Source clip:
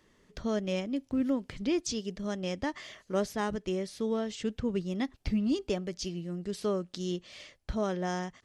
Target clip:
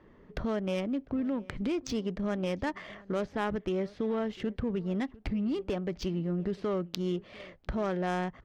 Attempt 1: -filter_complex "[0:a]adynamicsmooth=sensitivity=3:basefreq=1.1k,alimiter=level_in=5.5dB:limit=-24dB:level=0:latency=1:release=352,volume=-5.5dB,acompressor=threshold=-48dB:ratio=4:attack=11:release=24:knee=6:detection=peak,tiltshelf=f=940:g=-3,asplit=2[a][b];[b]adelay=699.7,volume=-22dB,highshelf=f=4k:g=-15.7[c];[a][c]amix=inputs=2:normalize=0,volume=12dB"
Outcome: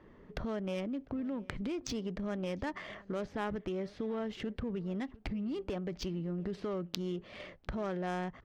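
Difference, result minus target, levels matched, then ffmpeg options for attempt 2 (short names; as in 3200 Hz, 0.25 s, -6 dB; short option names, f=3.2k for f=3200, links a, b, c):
compressor: peak gain reduction +6 dB
-filter_complex "[0:a]adynamicsmooth=sensitivity=3:basefreq=1.1k,alimiter=level_in=5.5dB:limit=-24dB:level=0:latency=1:release=352,volume=-5.5dB,acompressor=threshold=-40dB:ratio=4:attack=11:release=24:knee=6:detection=peak,tiltshelf=f=940:g=-3,asplit=2[a][b];[b]adelay=699.7,volume=-22dB,highshelf=f=4k:g=-15.7[c];[a][c]amix=inputs=2:normalize=0,volume=12dB"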